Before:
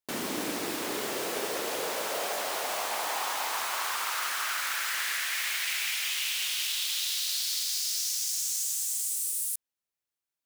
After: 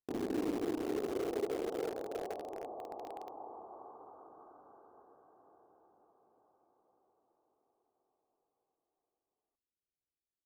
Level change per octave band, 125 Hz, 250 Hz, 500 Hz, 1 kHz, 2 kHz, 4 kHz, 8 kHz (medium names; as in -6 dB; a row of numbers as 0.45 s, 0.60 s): no reading, +1.0 dB, -2.0 dB, -13.0 dB, -24.0 dB, -28.5 dB, -32.0 dB